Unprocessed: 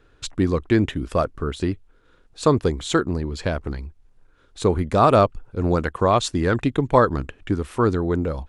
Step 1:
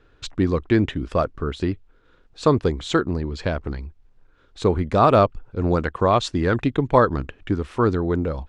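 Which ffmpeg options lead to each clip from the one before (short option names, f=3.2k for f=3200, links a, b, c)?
-af "lowpass=5.5k"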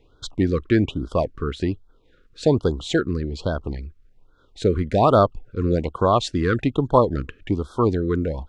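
-af "afftfilt=real='re*(1-between(b*sr/1024,720*pow(2300/720,0.5+0.5*sin(2*PI*1.2*pts/sr))/1.41,720*pow(2300/720,0.5+0.5*sin(2*PI*1.2*pts/sr))*1.41))':imag='im*(1-between(b*sr/1024,720*pow(2300/720,0.5+0.5*sin(2*PI*1.2*pts/sr))/1.41,720*pow(2300/720,0.5+0.5*sin(2*PI*1.2*pts/sr))*1.41))':win_size=1024:overlap=0.75"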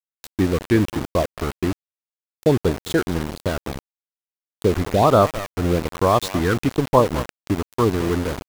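-filter_complex "[0:a]asplit=2[a][b];[b]adelay=211,lowpass=f=2.3k:p=1,volume=-13dB,asplit=2[c][d];[d]adelay=211,lowpass=f=2.3k:p=1,volume=0.15[e];[a][c][e]amix=inputs=3:normalize=0,aeval=exprs='val(0)*gte(abs(val(0)),0.0631)':c=same,volume=1dB"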